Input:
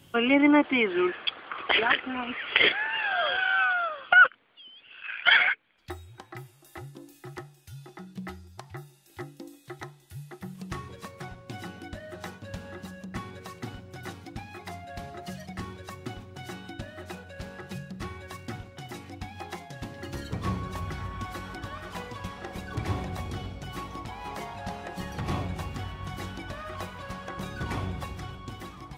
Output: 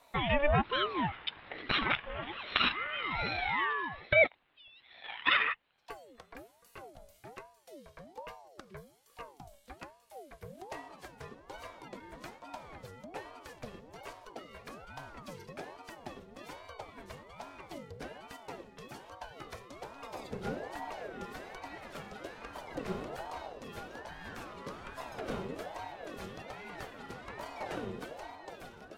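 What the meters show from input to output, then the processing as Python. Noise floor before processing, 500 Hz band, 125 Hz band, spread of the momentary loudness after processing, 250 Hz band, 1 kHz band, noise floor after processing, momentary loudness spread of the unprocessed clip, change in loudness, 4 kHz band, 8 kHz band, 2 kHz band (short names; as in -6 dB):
-57 dBFS, -3.5 dB, -9.0 dB, 21 LU, -12.5 dB, -6.0 dB, -65 dBFS, 22 LU, -8.0 dB, -7.0 dB, -7.5 dB, -9.5 dB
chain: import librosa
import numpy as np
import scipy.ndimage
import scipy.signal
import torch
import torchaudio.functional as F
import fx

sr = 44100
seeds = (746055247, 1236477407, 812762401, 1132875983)

y = fx.ring_lfo(x, sr, carrier_hz=560.0, swing_pct=50, hz=1.2)
y = y * librosa.db_to_amplitude(-4.5)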